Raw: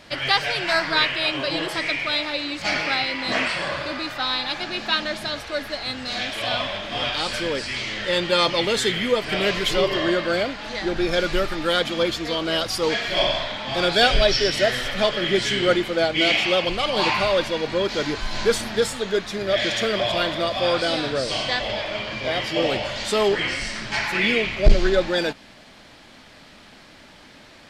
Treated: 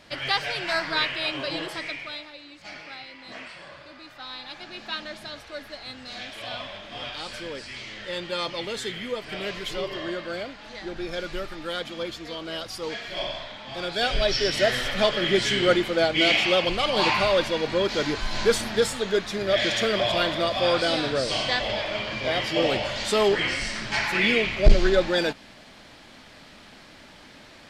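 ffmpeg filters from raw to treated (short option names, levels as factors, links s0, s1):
-af "volume=3.76,afade=t=out:st=1.52:d=0.8:silence=0.237137,afade=t=in:st=3.94:d=1:silence=0.421697,afade=t=in:st=13.92:d=0.83:silence=0.354813"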